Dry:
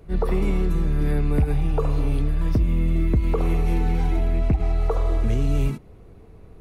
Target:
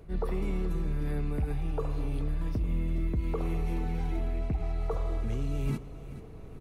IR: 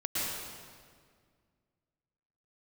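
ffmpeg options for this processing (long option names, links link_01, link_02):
-af "areverse,acompressor=threshold=-27dB:ratio=6,areverse,aecho=1:1:428|856|1284|1712:0.188|0.0885|0.0416|0.0196"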